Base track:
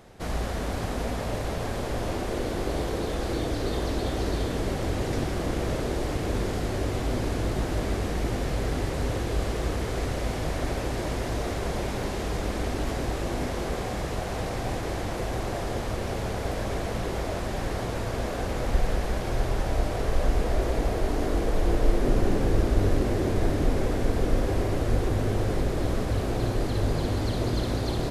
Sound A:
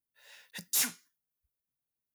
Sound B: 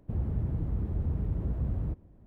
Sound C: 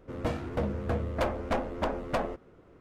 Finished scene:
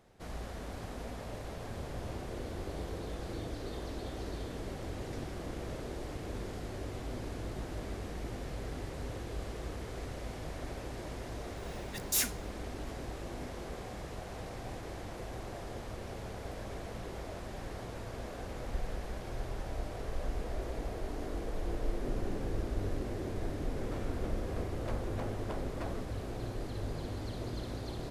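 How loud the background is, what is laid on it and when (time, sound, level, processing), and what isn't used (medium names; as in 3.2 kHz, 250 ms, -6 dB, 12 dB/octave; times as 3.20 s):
base track -12.5 dB
1.61 s: add B -15 dB
11.39 s: add A -1.5 dB
23.67 s: add C -6 dB + peak limiter -29.5 dBFS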